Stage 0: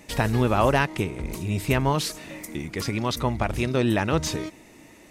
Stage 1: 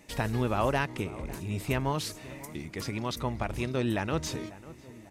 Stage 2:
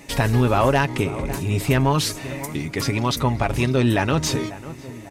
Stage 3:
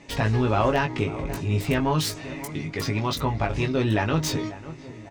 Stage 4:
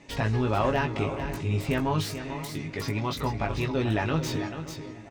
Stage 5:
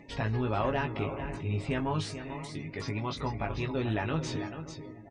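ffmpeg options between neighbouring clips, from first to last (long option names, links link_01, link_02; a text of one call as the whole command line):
ffmpeg -i in.wav -filter_complex "[0:a]asplit=2[link_01][link_02];[link_02]adelay=546,lowpass=frequency=1600:poles=1,volume=-17dB,asplit=2[link_03][link_04];[link_04]adelay=546,lowpass=frequency=1600:poles=1,volume=0.54,asplit=2[link_05][link_06];[link_06]adelay=546,lowpass=frequency=1600:poles=1,volume=0.54,asplit=2[link_07][link_08];[link_08]adelay=546,lowpass=frequency=1600:poles=1,volume=0.54,asplit=2[link_09][link_10];[link_10]adelay=546,lowpass=frequency=1600:poles=1,volume=0.54[link_11];[link_01][link_03][link_05][link_07][link_09][link_11]amix=inputs=6:normalize=0,volume=-7dB" out.wav
ffmpeg -i in.wav -filter_complex "[0:a]aecho=1:1:7.3:0.39,asplit=2[link_01][link_02];[link_02]alimiter=limit=-20dB:level=0:latency=1,volume=2dB[link_03];[link_01][link_03]amix=inputs=2:normalize=0,asoftclip=type=tanh:threshold=-11.5dB,volume=4.5dB" out.wav
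ffmpeg -i in.wav -filter_complex "[0:a]acrossover=split=7000[link_01][link_02];[link_02]acrusher=bits=4:mix=0:aa=0.000001[link_03];[link_01][link_03]amix=inputs=2:normalize=0,asplit=2[link_04][link_05];[link_05]adelay=19,volume=-5dB[link_06];[link_04][link_06]amix=inputs=2:normalize=0,volume=-5dB" out.wav
ffmpeg -i in.wav -filter_complex "[0:a]aecho=1:1:440:0.316,acrossover=split=3300[link_01][link_02];[link_02]asoftclip=type=tanh:threshold=-31.5dB[link_03];[link_01][link_03]amix=inputs=2:normalize=0,volume=-3.5dB" out.wav
ffmpeg -i in.wav -af "aresample=22050,aresample=44100,acompressor=mode=upward:threshold=-41dB:ratio=2.5,afftdn=noise_reduction=20:noise_floor=-48,volume=-4.5dB" out.wav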